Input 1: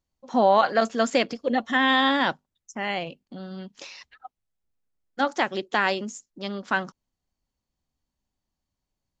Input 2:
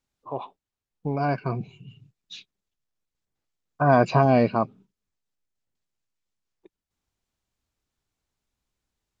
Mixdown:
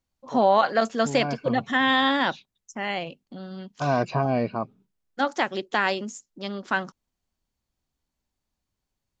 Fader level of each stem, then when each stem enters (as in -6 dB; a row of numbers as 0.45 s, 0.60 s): -0.5 dB, -5.5 dB; 0.00 s, 0.00 s